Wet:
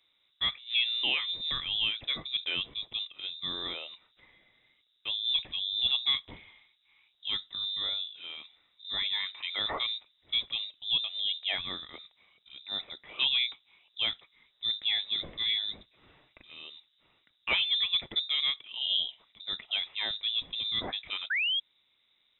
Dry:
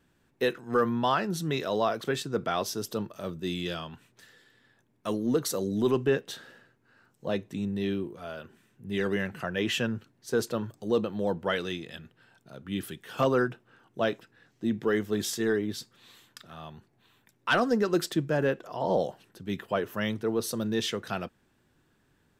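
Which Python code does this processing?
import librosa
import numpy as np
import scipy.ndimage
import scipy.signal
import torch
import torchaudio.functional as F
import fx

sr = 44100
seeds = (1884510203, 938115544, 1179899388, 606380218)

y = fx.spec_paint(x, sr, seeds[0], shape='fall', start_s=21.3, length_s=0.3, low_hz=460.0, high_hz=2400.0, level_db=-25.0)
y = fx.freq_invert(y, sr, carrier_hz=3800)
y = y * 10.0 ** (-3.5 / 20.0)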